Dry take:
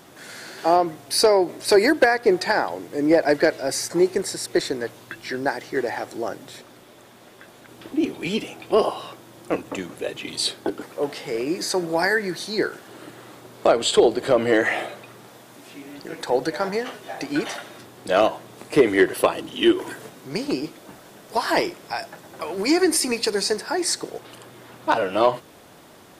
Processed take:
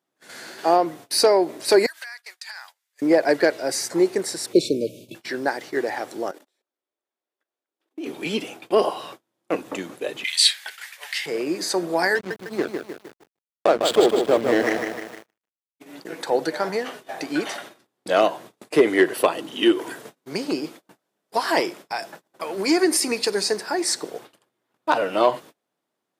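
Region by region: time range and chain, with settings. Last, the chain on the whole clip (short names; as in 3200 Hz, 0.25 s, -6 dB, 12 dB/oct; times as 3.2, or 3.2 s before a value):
1.86–3.02 Bessel high-pass 1800 Hz, order 4 + high shelf 3300 Hz +6 dB + compressor 5:1, threshold -34 dBFS
4.53–5.15 brick-wall FIR band-stop 660–2200 Hz + low shelf 310 Hz +11.5 dB
6.31–8.07 HPF 290 Hz 24 dB/oct + level quantiser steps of 15 dB
10.24–11.26 inverse Chebyshev high-pass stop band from 170 Hz, stop band 80 dB + resonant high shelf 1500 Hz +7 dB, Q 3
12.15–15.8 backlash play -17.5 dBFS + lo-fi delay 0.153 s, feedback 55%, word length 7-bit, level -5 dB
whole clip: gate -39 dBFS, range -32 dB; HPF 180 Hz 12 dB/oct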